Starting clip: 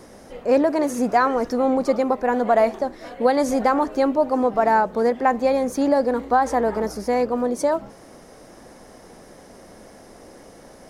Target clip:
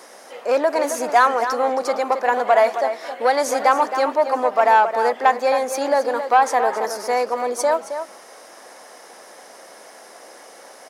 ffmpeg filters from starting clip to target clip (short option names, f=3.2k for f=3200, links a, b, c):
-filter_complex "[0:a]acontrast=71,highpass=700,asplit=2[a][b];[b]adelay=268.2,volume=-9dB,highshelf=f=4k:g=-6.04[c];[a][c]amix=inputs=2:normalize=0"